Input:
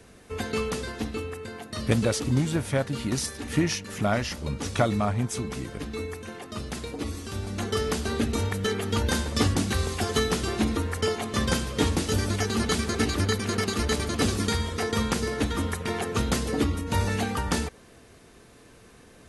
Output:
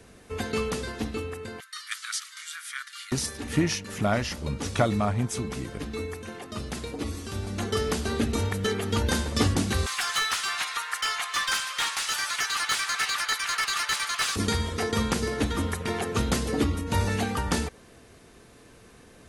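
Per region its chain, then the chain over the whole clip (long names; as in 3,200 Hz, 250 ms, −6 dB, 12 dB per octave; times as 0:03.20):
0:01.60–0:03.12: Butterworth high-pass 1,200 Hz 72 dB per octave + notch filter 2,600 Hz, Q 8.9
0:09.86–0:14.36: high-pass filter 1,100 Hz 24 dB per octave + mid-hump overdrive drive 17 dB, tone 1,500 Hz, clips at −13.5 dBFS + high-shelf EQ 5,000 Hz +10.5 dB
whole clip: no processing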